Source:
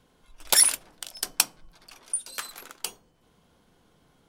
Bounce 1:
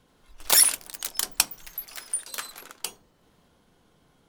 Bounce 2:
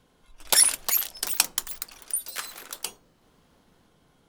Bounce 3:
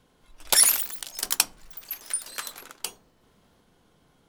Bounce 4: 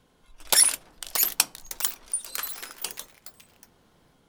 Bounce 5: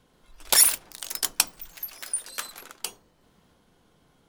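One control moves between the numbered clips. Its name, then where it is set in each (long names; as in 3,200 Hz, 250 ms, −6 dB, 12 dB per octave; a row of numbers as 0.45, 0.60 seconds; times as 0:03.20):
delay with pitch and tempo change per echo, delay time: 83, 469, 213, 736, 135 milliseconds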